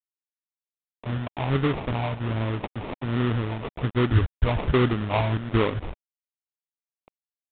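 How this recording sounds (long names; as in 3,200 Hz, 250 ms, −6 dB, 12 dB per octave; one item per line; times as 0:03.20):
a quantiser's noise floor 6 bits, dither none
phaser sweep stages 12, 1.3 Hz, lowest notch 340–1,400 Hz
aliases and images of a low sample rate 1,600 Hz, jitter 20%
mu-law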